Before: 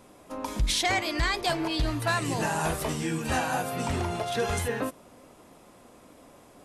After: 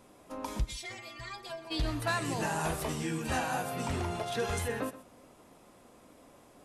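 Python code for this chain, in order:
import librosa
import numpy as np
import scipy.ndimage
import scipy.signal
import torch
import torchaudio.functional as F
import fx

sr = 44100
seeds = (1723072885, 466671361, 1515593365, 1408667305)

y = fx.stiff_resonator(x, sr, f0_hz=120.0, decay_s=0.34, stiffness=0.008, at=(0.63, 1.7), fade=0.02)
y = y + 10.0 ** (-16.0 / 20.0) * np.pad(y, (int(125 * sr / 1000.0), 0))[:len(y)]
y = y * 10.0 ** (-4.5 / 20.0)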